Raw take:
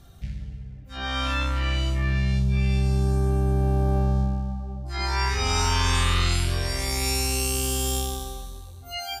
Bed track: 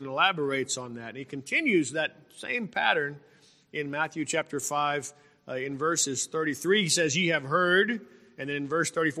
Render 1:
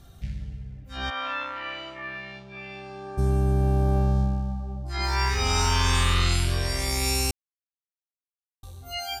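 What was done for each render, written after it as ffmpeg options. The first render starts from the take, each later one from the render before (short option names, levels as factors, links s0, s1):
-filter_complex "[0:a]asplit=3[s0][s1][s2];[s0]afade=t=out:st=1.09:d=0.02[s3];[s1]highpass=540,lowpass=2400,afade=t=in:st=1.09:d=0.02,afade=t=out:st=3.17:d=0.02[s4];[s2]afade=t=in:st=3.17:d=0.02[s5];[s3][s4][s5]amix=inputs=3:normalize=0,asettb=1/sr,asplit=3[s6][s7][s8];[s6]atrim=end=5.034[s9];[s7]atrim=start=5.03:end=6.12,asetpts=PTS-STARTPTS,afade=t=in:d=0.004:c=qsin,afade=t=out:st=1.086:d=0.004:c=qsin,acrusher=bits=7:mix=0:aa=0.5[s10];[s8]atrim=start=6.116[s11];[s9][s10]acrossfade=d=0.004:c1=hsin:c2=qsin[s12];[s12][s11]acrossfade=d=0.004:c1=qsin:c2=hsin,asplit=3[s13][s14][s15];[s13]atrim=end=7.31,asetpts=PTS-STARTPTS,afade=t=out:st=7.306:d=0.004:c=hsin[s16];[s14]atrim=start=7.31:end=8.63,asetpts=PTS-STARTPTS,volume=0[s17];[s15]atrim=start=8.63,asetpts=PTS-STARTPTS,afade=t=in:d=0.004:c=hsin[s18];[s16][s17][s18]concat=n=3:v=0:a=1"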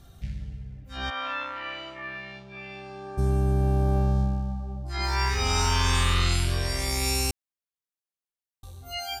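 -af "volume=0.891"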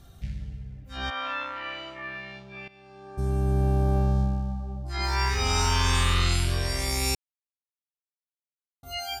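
-filter_complex "[0:a]asplit=4[s0][s1][s2][s3];[s0]atrim=end=2.68,asetpts=PTS-STARTPTS,afade=t=out:st=2.676:d=0.004:c=hsin:silence=0.158489[s4];[s1]atrim=start=2.68:end=7.15,asetpts=PTS-STARTPTS,afade=t=in:d=0.91:silence=0.158489,afade=t=out:st=4.466:d=0.004:c=hsin[s5];[s2]atrim=start=7.15:end=8.83,asetpts=PTS-STARTPTS,volume=0[s6];[s3]atrim=start=8.83,asetpts=PTS-STARTPTS,afade=t=in:d=0.004:c=hsin[s7];[s4][s5][s6][s7]concat=n=4:v=0:a=1"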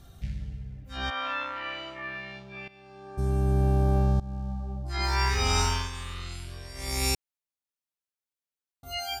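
-filter_complex "[0:a]asplit=4[s0][s1][s2][s3];[s0]atrim=end=4.2,asetpts=PTS-STARTPTS,afade=t=out:st=4.196:d=0.004:c=hsin:silence=0.0944061[s4];[s1]atrim=start=4.2:end=5.9,asetpts=PTS-STARTPTS,afade=t=in:d=0.57:c=qsin:silence=0.0944061,afade=t=out:st=1.39:d=0.31:silence=0.188365[s5];[s2]atrim=start=5.9:end=6.74,asetpts=PTS-STARTPTS,volume=0.188[s6];[s3]atrim=start=6.74,asetpts=PTS-STARTPTS,afade=t=in:d=0.31:silence=0.188365[s7];[s4][s5][s6][s7]concat=n=4:v=0:a=1"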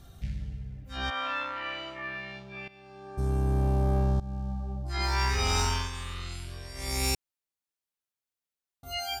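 -af "asoftclip=type=tanh:threshold=0.112"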